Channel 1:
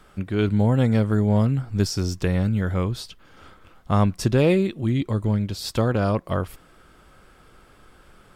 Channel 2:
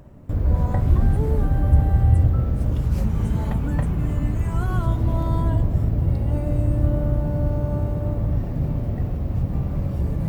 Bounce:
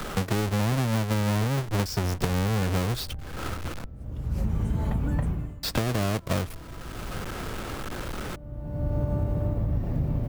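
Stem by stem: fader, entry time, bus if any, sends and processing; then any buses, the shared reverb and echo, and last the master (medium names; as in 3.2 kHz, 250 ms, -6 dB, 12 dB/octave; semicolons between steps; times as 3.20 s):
-4.0 dB, 0.00 s, muted 3.86–5.63 s, no send, square wave that keeps the level; three bands compressed up and down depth 70%
0.0 dB, 1.40 s, no send, auto duck -23 dB, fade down 0.35 s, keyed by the first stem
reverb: none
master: compression, threshold -22 dBFS, peak gain reduction 8 dB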